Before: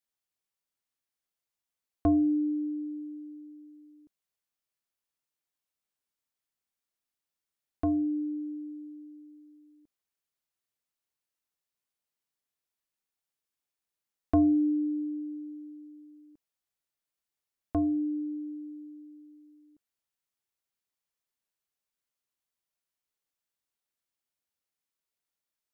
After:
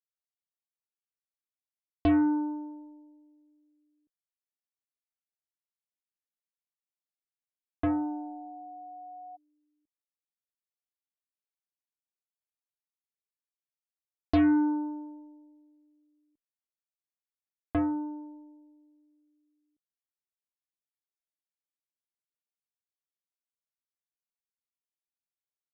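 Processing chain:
harmonic generator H 4 −44 dB, 7 −18 dB, 8 −39 dB, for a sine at −16.5 dBFS
0:07.88–0:09.35: steady tone 730 Hz −42 dBFS

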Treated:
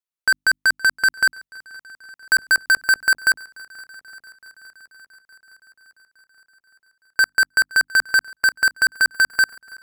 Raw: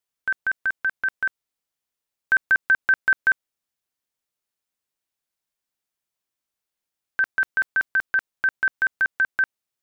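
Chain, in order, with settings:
mains-hum notches 50/100/150/200/250/300 Hz
leveller curve on the samples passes 5
feedback echo with a long and a short gap by turns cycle 864 ms, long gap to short 1.5 to 1, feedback 54%, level −23 dB

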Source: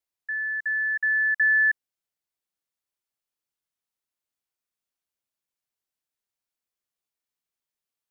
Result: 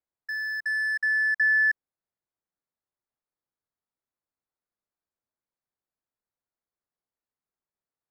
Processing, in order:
adaptive Wiener filter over 15 samples
in parallel at −3 dB: brickwall limiter −28.5 dBFS, peak gain reduction 11.5 dB
on the sum: level −2.5 dB

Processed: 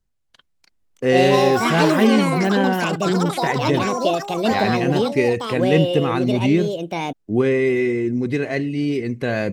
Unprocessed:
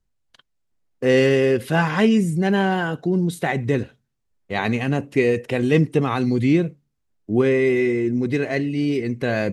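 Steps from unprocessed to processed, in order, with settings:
delay with pitch and tempo change per echo 397 ms, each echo +6 semitones, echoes 3

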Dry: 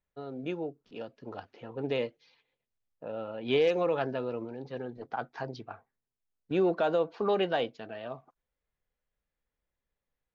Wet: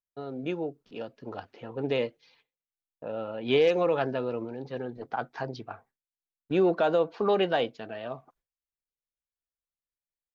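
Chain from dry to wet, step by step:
noise gate with hold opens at −55 dBFS
level +3 dB

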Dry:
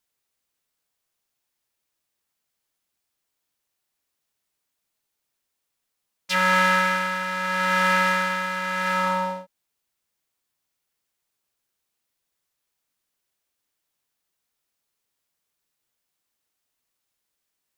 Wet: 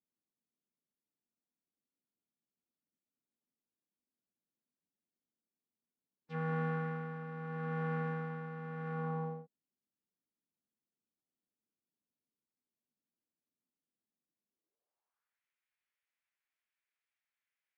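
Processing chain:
phase-vocoder pitch shift with formants kept −2.5 semitones
band-pass filter sweep 230 Hz → 2,100 Hz, 0:14.48–0:15.40
high-shelf EQ 3,500 Hz −11 dB
level +1 dB

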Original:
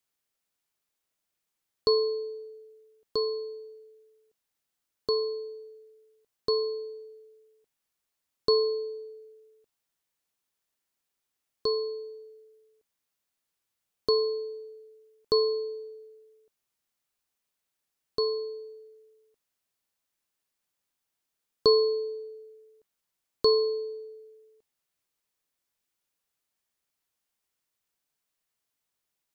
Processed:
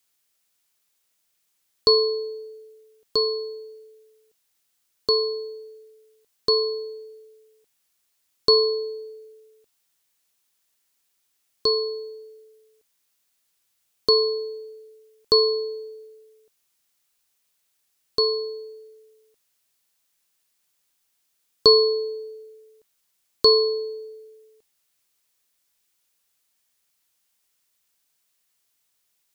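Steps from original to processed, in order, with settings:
high-shelf EQ 2,000 Hz +8.5 dB
level +4 dB

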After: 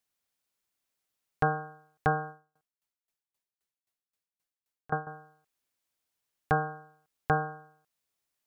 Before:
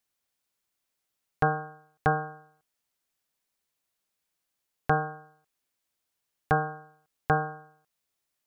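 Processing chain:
0:02.29–0:05.07: tremolo with a ramp in dB decaying 3.8 Hz, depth 24 dB
level −2 dB

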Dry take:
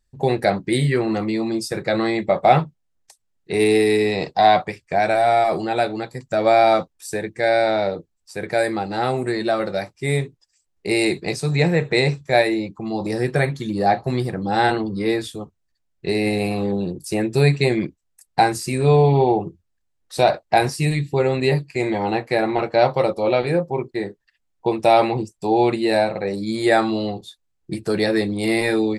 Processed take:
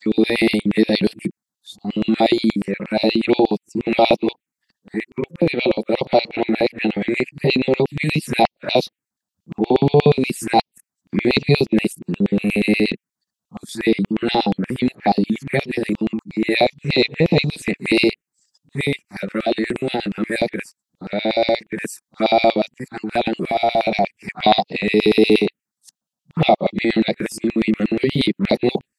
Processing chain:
played backwards from end to start
phaser swept by the level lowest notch 360 Hz, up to 1,600 Hz, full sweep at −14.5 dBFS
auto-filter high-pass square 8.4 Hz 210–2,600 Hz
level +3 dB

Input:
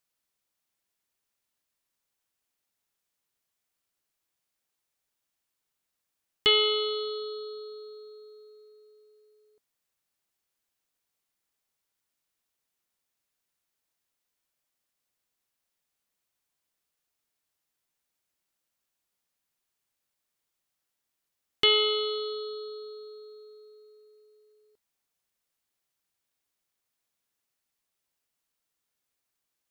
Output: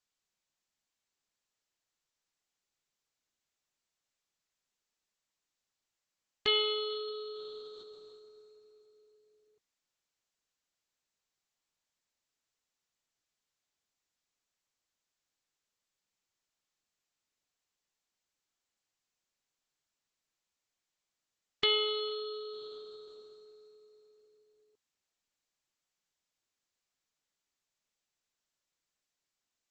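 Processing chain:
level −6 dB
Opus 10 kbit/s 48,000 Hz

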